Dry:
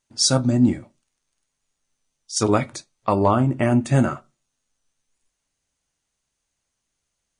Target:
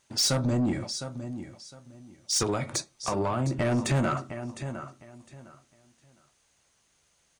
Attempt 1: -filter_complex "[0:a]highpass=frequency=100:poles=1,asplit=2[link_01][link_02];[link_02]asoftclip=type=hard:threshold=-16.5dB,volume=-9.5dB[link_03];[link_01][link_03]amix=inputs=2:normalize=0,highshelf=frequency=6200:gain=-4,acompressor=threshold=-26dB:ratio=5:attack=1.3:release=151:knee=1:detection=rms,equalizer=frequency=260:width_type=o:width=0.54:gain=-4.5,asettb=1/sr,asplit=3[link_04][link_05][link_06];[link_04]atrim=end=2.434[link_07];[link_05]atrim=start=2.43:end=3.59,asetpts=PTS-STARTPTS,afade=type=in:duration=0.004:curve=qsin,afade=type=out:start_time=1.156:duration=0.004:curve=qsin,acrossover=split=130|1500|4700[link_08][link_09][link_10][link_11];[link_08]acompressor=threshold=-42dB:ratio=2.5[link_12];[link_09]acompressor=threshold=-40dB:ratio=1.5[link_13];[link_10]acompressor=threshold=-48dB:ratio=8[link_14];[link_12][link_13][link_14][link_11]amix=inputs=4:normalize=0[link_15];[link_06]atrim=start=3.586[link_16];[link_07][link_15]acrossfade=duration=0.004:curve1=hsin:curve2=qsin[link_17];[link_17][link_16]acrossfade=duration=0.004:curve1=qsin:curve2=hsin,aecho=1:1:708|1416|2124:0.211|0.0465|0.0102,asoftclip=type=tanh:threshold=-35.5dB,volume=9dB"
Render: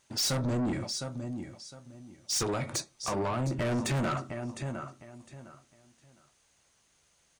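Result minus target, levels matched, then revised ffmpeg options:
soft clipping: distortion +6 dB
-filter_complex "[0:a]highpass=frequency=100:poles=1,asplit=2[link_01][link_02];[link_02]asoftclip=type=hard:threshold=-16.5dB,volume=-9.5dB[link_03];[link_01][link_03]amix=inputs=2:normalize=0,highshelf=frequency=6200:gain=-4,acompressor=threshold=-26dB:ratio=5:attack=1.3:release=151:knee=1:detection=rms,equalizer=frequency=260:width_type=o:width=0.54:gain=-4.5,asettb=1/sr,asplit=3[link_04][link_05][link_06];[link_04]atrim=end=2.434[link_07];[link_05]atrim=start=2.43:end=3.59,asetpts=PTS-STARTPTS,afade=type=in:duration=0.004:curve=qsin,afade=type=out:start_time=1.156:duration=0.004:curve=qsin,acrossover=split=130|1500|4700[link_08][link_09][link_10][link_11];[link_08]acompressor=threshold=-42dB:ratio=2.5[link_12];[link_09]acompressor=threshold=-40dB:ratio=1.5[link_13];[link_10]acompressor=threshold=-48dB:ratio=8[link_14];[link_12][link_13][link_14][link_11]amix=inputs=4:normalize=0[link_15];[link_06]atrim=start=3.586[link_16];[link_07][link_15]acrossfade=duration=0.004:curve1=hsin:curve2=qsin[link_17];[link_17][link_16]acrossfade=duration=0.004:curve1=qsin:curve2=hsin,aecho=1:1:708|1416|2124:0.211|0.0465|0.0102,asoftclip=type=tanh:threshold=-29dB,volume=9dB"

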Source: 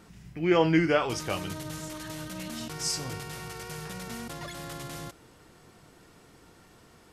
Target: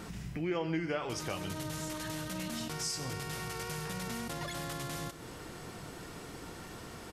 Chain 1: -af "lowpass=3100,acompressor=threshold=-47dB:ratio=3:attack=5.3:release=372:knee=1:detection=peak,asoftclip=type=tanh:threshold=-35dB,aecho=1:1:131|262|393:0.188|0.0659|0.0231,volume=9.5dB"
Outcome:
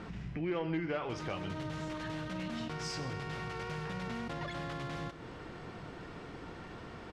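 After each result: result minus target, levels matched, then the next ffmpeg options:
soft clipping: distortion +14 dB; 4,000 Hz band −3.5 dB
-af "lowpass=3100,acompressor=threshold=-47dB:ratio=3:attack=5.3:release=372:knee=1:detection=peak,asoftclip=type=tanh:threshold=-27dB,aecho=1:1:131|262|393:0.188|0.0659|0.0231,volume=9.5dB"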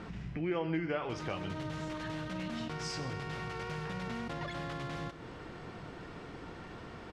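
4,000 Hz band −3.5 dB
-af "acompressor=threshold=-47dB:ratio=3:attack=5.3:release=372:knee=1:detection=peak,asoftclip=type=tanh:threshold=-27dB,aecho=1:1:131|262|393:0.188|0.0659|0.0231,volume=9.5dB"

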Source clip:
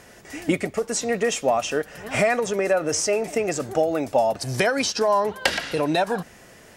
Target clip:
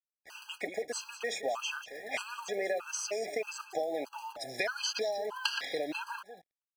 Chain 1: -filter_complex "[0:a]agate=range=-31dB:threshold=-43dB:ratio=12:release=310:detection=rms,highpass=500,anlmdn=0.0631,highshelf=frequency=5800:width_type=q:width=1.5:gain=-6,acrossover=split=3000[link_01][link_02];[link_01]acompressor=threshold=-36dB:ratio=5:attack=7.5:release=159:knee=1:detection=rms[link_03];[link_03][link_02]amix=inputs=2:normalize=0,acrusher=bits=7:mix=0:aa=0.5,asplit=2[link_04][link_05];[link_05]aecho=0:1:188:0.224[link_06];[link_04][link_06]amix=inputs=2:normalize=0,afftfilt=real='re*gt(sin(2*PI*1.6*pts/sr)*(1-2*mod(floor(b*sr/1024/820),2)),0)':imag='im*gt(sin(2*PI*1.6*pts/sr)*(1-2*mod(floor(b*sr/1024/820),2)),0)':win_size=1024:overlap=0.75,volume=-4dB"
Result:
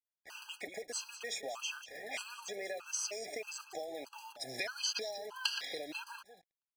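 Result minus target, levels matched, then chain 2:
downward compressor: peak gain reduction +9 dB
-filter_complex "[0:a]agate=range=-31dB:threshold=-43dB:ratio=12:release=310:detection=rms,highpass=500,anlmdn=0.0631,highshelf=frequency=5800:width_type=q:width=1.5:gain=-6,acrossover=split=3000[link_01][link_02];[link_01]acompressor=threshold=-24.5dB:ratio=5:attack=7.5:release=159:knee=1:detection=rms[link_03];[link_03][link_02]amix=inputs=2:normalize=0,acrusher=bits=7:mix=0:aa=0.5,asplit=2[link_04][link_05];[link_05]aecho=0:1:188:0.224[link_06];[link_04][link_06]amix=inputs=2:normalize=0,afftfilt=real='re*gt(sin(2*PI*1.6*pts/sr)*(1-2*mod(floor(b*sr/1024/820),2)),0)':imag='im*gt(sin(2*PI*1.6*pts/sr)*(1-2*mod(floor(b*sr/1024/820),2)),0)':win_size=1024:overlap=0.75,volume=-4dB"

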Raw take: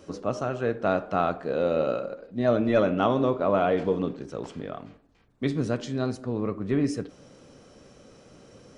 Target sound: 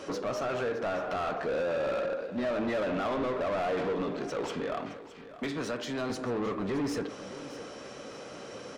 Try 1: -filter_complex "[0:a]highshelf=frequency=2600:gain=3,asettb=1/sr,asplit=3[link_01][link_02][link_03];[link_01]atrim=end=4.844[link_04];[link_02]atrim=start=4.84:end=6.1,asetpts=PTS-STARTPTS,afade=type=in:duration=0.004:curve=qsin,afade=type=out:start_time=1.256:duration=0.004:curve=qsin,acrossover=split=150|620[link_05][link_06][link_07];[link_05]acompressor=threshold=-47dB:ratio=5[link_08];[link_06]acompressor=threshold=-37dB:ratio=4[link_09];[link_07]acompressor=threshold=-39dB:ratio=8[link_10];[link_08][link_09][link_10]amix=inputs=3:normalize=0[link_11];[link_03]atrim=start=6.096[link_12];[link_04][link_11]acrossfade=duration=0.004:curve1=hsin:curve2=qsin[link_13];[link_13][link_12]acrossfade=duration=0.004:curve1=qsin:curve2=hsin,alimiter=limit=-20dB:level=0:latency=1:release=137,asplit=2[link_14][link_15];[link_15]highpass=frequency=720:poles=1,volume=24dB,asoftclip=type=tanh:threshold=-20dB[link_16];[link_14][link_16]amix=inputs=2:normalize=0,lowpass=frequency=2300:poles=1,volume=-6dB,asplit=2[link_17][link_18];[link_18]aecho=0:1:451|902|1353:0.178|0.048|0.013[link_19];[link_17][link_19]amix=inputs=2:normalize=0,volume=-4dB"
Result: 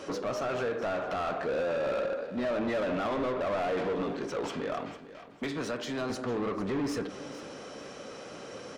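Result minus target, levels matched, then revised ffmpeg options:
echo 165 ms early
-filter_complex "[0:a]highshelf=frequency=2600:gain=3,asettb=1/sr,asplit=3[link_01][link_02][link_03];[link_01]atrim=end=4.844[link_04];[link_02]atrim=start=4.84:end=6.1,asetpts=PTS-STARTPTS,afade=type=in:duration=0.004:curve=qsin,afade=type=out:start_time=1.256:duration=0.004:curve=qsin,acrossover=split=150|620[link_05][link_06][link_07];[link_05]acompressor=threshold=-47dB:ratio=5[link_08];[link_06]acompressor=threshold=-37dB:ratio=4[link_09];[link_07]acompressor=threshold=-39dB:ratio=8[link_10];[link_08][link_09][link_10]amix=inputs=3:normalize=0[link_11];[link_03]atrim=start=6.096[link_12];[link_04][link_11]acrossfade=duration=0.004:curve1=hsin:curve2=qsin[link_13];[link_13][link_12]acrossfade=duration=0.004:curve1=qsin:curve2=hsin,alimiter=limit=-20dB:level=0:latency=1:release=137,asplit=2[link_14][link_15];[link_15]highpass=frequency=720:poles=1,volume=24dB,asoftclip=type=tanh:threshold=-20dB[link_16];[link_14][link_16]amix=inputs=2:normalize=0,lowpass=frequency=2300:poles=1,volume=-6dB,asplit=2[link_17][link_18];[link_18]aecho=0:1:616|1232|1848:0.178|0.048|0.013[link_19];[link_17][link_19]amix=inputs=2:normalize=0,volume=-4dB"

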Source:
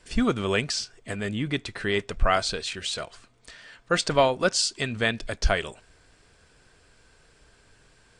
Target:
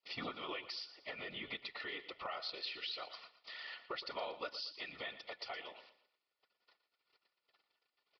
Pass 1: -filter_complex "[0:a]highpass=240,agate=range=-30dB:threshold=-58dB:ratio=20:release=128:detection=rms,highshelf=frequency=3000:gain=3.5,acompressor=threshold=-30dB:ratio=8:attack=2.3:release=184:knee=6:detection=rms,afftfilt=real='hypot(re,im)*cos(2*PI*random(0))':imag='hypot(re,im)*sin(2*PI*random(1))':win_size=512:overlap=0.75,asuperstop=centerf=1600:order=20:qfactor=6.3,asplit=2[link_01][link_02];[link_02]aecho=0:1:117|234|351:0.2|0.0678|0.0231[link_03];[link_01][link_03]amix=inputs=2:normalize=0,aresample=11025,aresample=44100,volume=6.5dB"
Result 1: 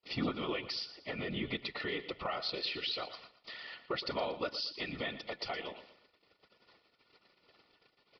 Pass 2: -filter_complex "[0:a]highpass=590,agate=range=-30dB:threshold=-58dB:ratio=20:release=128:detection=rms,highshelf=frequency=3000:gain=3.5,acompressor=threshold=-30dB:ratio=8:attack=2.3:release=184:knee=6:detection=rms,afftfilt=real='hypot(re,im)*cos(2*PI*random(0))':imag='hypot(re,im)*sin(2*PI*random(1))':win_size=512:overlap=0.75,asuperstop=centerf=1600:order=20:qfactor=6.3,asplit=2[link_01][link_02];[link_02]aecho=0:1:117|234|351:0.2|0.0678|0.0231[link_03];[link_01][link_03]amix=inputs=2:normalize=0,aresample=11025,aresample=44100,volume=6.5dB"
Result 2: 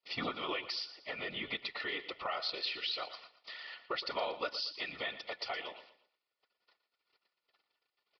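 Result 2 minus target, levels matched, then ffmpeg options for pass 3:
downward compressor: peak gain reduction −6 dB
-filter_complex "[0:a]highpass=590,agate=range=-30dB:threshold=-58dB:ratio=20:release=128:detection=rms,highshelf=frequency=3000:gain=3.5,acompressor=threshold=-37dB:ratio=8:attack=2.3:release=184:knee=6:detection=rms,afftfilt=real='hypot(re,im)*cos(2*PI*random(0))':imag='hypot(re,im)*sin(2*PI*random(1))':win_size=512:overlap=0.75,asuperstop=centerf=1600:order=20:qfactor=6.3,asplit=2[link_01][link_02];[link_02]aecho=0:1:117|234|351:0.2|0.0678|0.0231[link_03];[link_01][link_03]amix=inputs=2:normalize=0,aresample=11025,aresample=44100,volume=6.5dB"

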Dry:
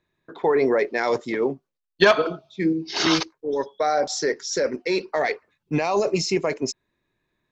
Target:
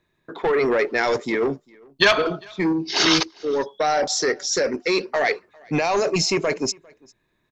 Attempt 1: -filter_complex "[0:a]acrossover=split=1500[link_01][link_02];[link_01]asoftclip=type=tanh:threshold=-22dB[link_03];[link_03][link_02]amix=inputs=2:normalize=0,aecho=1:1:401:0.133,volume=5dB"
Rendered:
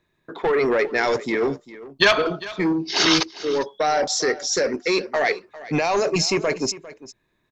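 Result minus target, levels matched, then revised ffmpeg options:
echo-to-direct +10 dB
-filter_complex "[0:a]acrossover=split=1500[link_01][link_02];[link_01]asoftclip=type=tanh:threshold=-22dB[link_03];[link_03][link_02]amix=inputs=2:normalize=0,aecho=1:1:401:0.0422,volume=5dB"

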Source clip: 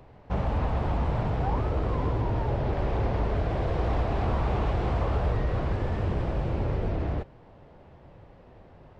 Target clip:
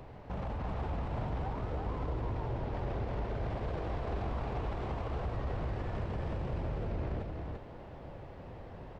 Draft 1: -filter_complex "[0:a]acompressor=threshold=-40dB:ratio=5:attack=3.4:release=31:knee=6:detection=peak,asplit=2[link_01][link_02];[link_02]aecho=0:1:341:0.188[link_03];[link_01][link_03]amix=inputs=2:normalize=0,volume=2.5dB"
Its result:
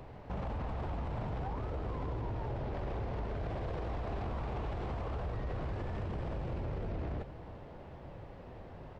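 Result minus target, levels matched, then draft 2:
echo-to-direct −11.5 dB
-filter_complex "[0:a]acompressor=threshold=-40dB:ratio=5:attack=3.4:release=31:knee=6:detection=peak,asplit=2[link_01][link_02];[link_02]aecho=0:1:341:0.708[link_03];[link_01][link_03]amix=inputs=2:normalize=0,volume=2.5dB"

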